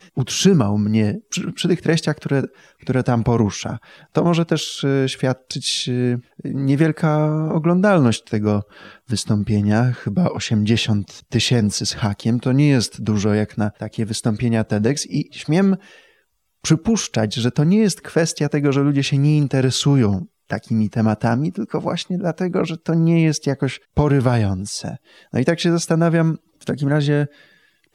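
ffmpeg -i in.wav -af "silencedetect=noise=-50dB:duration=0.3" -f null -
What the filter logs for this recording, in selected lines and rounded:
silence_start: 16.20
silence_end: 16.64 | silence_duration: 0.45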